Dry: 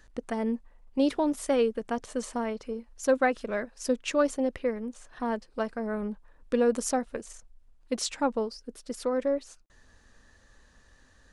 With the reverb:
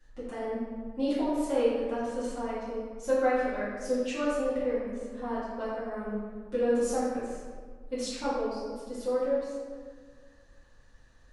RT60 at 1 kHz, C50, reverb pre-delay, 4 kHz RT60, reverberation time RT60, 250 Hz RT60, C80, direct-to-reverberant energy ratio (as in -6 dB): 1.6 s, -2.0 dB, 4 ms, 0.95 s, 1.7 s, 2.1 s, 0.5 dB, -14.0 dB